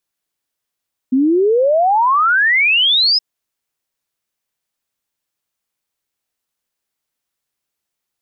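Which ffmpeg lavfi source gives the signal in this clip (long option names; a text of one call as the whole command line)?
ffmpeg -f lavfi -i "aevalsrc='0.316*clip(min(t,2.07-t)/0.01,0,1)*sin(2*PI*250*2.07/log(5200/250)*(exp(log(5200/250)*t/2.07)-1))':duration=2.07:sample_rate=44100" out.wav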